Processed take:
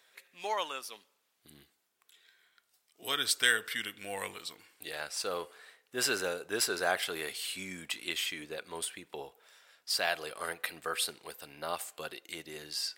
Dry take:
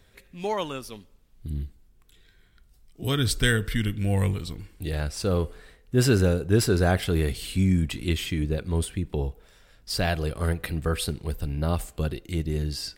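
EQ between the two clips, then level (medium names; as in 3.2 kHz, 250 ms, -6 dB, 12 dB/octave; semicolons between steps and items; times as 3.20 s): high-pass 760 Hz 12 dB/octave; -1.0 dB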